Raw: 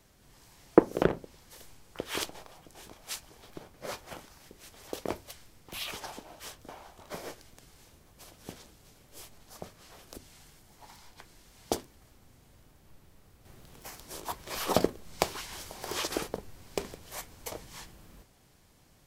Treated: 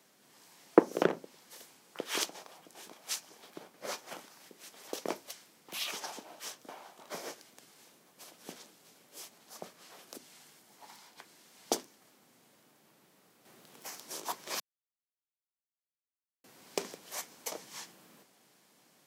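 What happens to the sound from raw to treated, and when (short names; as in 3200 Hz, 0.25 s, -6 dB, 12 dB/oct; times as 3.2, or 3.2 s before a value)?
14.6–16.44 mute
whole clip: dynamic EQ 6000 Hz, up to +5 dB, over -56 dBFS, Q 2.1; HPF 180 Hz 24 dB/oct; low shelf 500 Hz -3.5 dB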